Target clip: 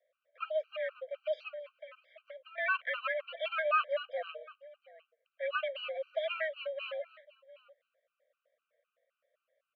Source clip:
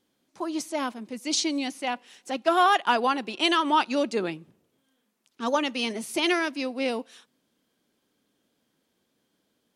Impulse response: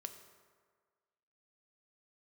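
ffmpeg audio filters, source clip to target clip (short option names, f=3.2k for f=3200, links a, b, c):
-filter_complex "[0:a]asplit=2[a][b];[b]alimiter=limit=-21dB:level=0:latency=1:release=155,volume=0dB[c];[a][c]amix=inputs=2:normalize=0,asettb=1/sr,asplit=3[d][e][f];[d]atrim=end=1.484[g];[e]atrim=start=1.48:end=2.58,asetpts=PTS-STARTPTS,afade=t=in:d=0.004:c=qsin,afade=t=out:st=1.096:d=0.004:c=qsin,acompressor=threshold=-33dB:ratio=10[h];[f]atrim=start=2.576[i];[g][h]acrossfade=d=0.004:c1=hsin:c2=qsin[j];[j][i]acrossfade=d=0.004:c1=qsin:c2=hsin,acrossover=split=1500[k][l];[k]acrusher=samples=14:mix=1:aa=0.000001[m];[m][l]amix=inputs=2:normalize=0,aecho=1:1:708:0.0891,highpass=f=170:t=q:w=0.5412,highpass=f=170:t=q:w=1.307,lowpass=f=2.4k:t=q:w=0.5176,lowpass=f=2.4k:t=q:w=0.7071,lowpass=f=2.4k:t=q:w=1.932,afreqshift=310,asuperstop=centerf=880:order=8:qfactor=1.8,afftfilt=real='re*gt(sin(2*PI*3.9*pts/sr)*(1-2*mod(floor(b*sr/1024/780),2)),0)':imag='im*gt(sin(2*PI*3.9*pts/sr)*(1-2*mod(floor(b*sr/1024/780),2)),0)':win_size=1024:overlap=0.75,volume=-6.5dB"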